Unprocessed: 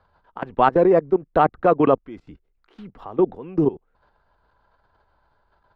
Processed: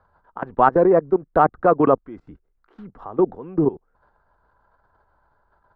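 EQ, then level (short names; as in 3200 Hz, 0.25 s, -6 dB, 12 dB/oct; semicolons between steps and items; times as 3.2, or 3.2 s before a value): resonant high shelf 2000 Hz -8.5 dB, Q 1.5; 0.0 dB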